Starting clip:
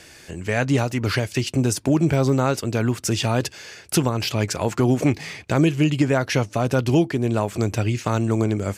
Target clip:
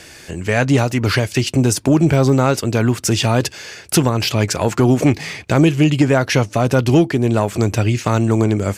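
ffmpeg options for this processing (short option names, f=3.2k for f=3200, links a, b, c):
-af "acontrast=55"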